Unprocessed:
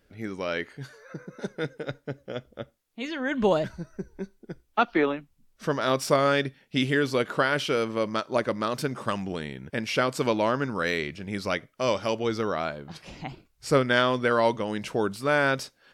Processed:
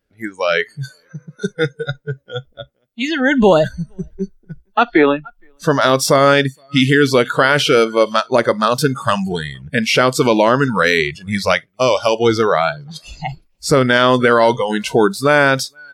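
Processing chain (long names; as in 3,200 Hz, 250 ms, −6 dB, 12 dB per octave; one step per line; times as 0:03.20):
on a send: single-tap delay 465 ms −23.5 dB
on the sum: noise reduction from a noise print of the clip's start 22 dB
boost into a limiter +15.5 dB
level −1 dB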